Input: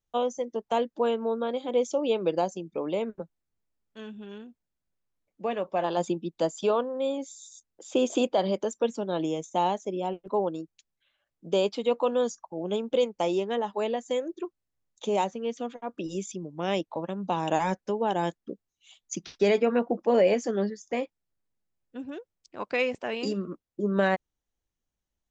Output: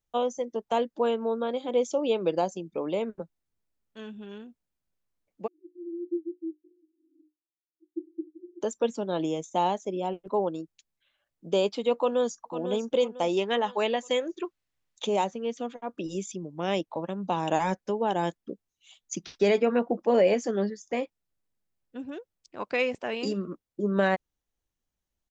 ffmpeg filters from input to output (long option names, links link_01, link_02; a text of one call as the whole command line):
ffmpeg -i in.wav -filter_complex "[0:a]asplit=3[link_01][link_02][link_03];[link_01]afade=type=out:start_time=5.46:duration=0.02[link_04];[link_02]asuperpass=centerf=330:order=12:qfactor=6.1,afade=type=in:start_time=5.46:duration=0.02,afade=type=out:start_time=8.6:duration=0.02[link_05];[link_03]afade=type=in:start_time=8.6:duration=0.02[link_06];[link_04][link_05][link_06]amix=inputs=3:normalize=0,asplit=2[link_07][link_08];[link_08]afade=type=in:start_time=11.95:duration=0.01,afade=type=out:start_time=12.5:duration=0.01,aecho=0:1:500|1000|1500|2000:0.334965|0.133986|0.0535945|0.0214378[link_09];[link_07][link_09]amix=inputs=2:normalize=0,asettb=1/sr,asplit=3[link_10][link_11][link_12];[link_10]atrim=end=13.374[link_13];[link_11]atrim=start=13.37:end=15.07,asetpts=PTS-STARTPTS,afade=type=in:duration=0.004:curve=qsin,afade=type=out:start_time=1.696:duration=0.004:curve=qsin,equalizer=frequency=2500:width_type=o:width=2.5:gain=8.5[link_14];[link_12]atrim=start=15.066[link_15];[link_13][link_14]acrossfade=duration=0.004:curve1=hsin:curve2=qsin[link_16];[link_16][link_15]acrossfade=duration=0.004:curve1=qsin:curve2=hsin" out.wav